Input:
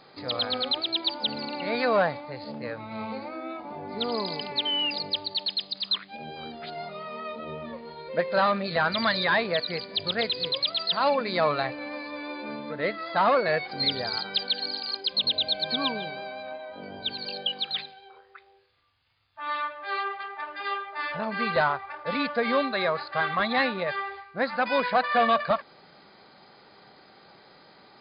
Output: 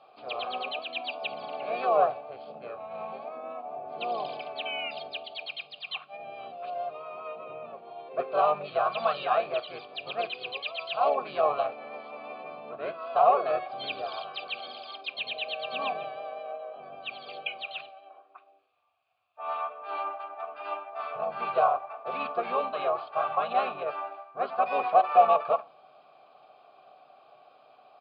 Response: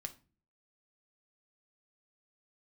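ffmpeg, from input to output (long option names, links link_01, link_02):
-filter_complex "[0:a]asplit=4[link_01][link_02][link_03][link_04];[link_02]asetrate=22050,aresample=44100,atempo=2,volume=-16dB[link_05];[link_03]asetrate=33038,aresample=44100,atempo=1.33484,volume=-2dB[link_06];[link_04]asetrate=37084,aresample=44100,atempo=1.18921,volume=-9dB[link_07];[link_01][link_05][link_06][link_07]amix=inputs=4:normalize=0,asplit=3[link_08][link_09][link_10];[link_08]bandpass=frequency=730:width_type=q:width=8,volume=0dB[link_11];[link_09]bandpass=frequency=1090:width_type=q:width=8,volume=-6dB[link_12];[link_10]bandpass=frequency=2440:width_type=q:width=8,volume=-9dB[link_13];[link_11][link_12][link_13]amix=inputs=3:normalize=0,asplit=2[link_14][link_15];[1:a]atrim=start_sample=2205,lowshelf=frequency=220:gain=6.5[link_16];[link_15][link_16]afir=irnorm=-1:irlink=0,volume=0.5dB[link_17];[link_14][link_17]amix=inputs=2:normalize=0"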